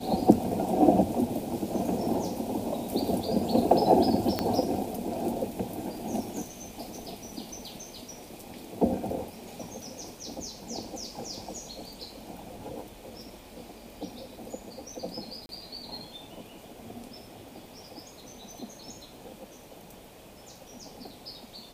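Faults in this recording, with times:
4.39 pop -12 dBFS
15.46–15.49 gap 31 ms

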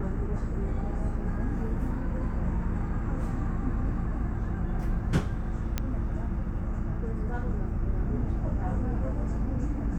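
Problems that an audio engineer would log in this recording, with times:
5.78 pop -13 dBFS

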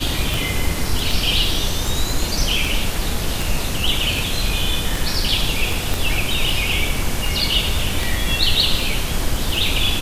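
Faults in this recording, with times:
tick 78 rpm
5.94 pop

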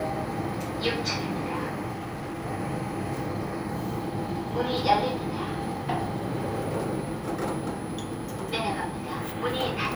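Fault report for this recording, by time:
1.92–2.46 clipped -31.5 dBFS

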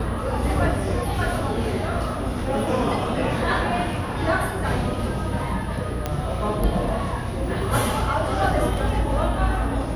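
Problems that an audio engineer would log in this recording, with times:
6.06 pop -11 dBFS

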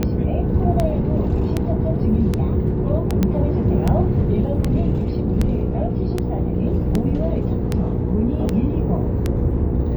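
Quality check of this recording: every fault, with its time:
hum 60 Hz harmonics 8 -24 dBFS
tick 78 rpm -7 dBFS
3.23 pop -7 dBFS

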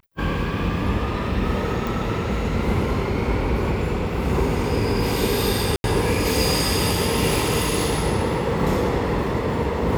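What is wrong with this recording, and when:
1.87 pop
5.76–5.84 gap 81 ms

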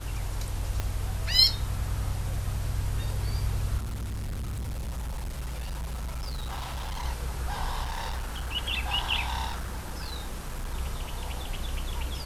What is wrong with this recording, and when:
0.8 pop -15 dBFS
3.77–7.05 clipped -30.5 dBFS
7.82–8.55 clipped -29 dBFS
9.46–10.75 clipped -29.5 dBFS

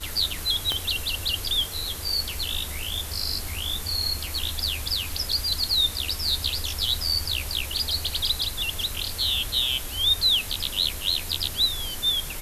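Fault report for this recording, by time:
0.72 pop -11 dBFS

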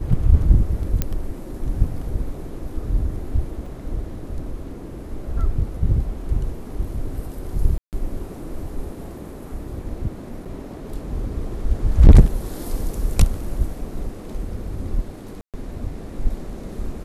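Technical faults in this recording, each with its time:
1.02 pop -7 dBFS
3.66 gap 4 ms
7.78–7.93 gap 0.148 s
10.45–10.46 gap 6.1 ms
15.41–15.54 gap 0.127 s

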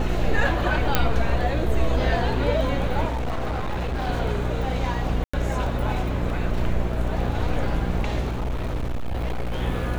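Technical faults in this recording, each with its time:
buzz 60 Hz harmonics 13 -27 dBFS
crackle 15/s
0.95 pop -3 dBFS
3.07–4.09 clipped -23 dBFS
5.24–5.33 gap 95 ms
8.3–9.63 clipped -22.5 dBFS

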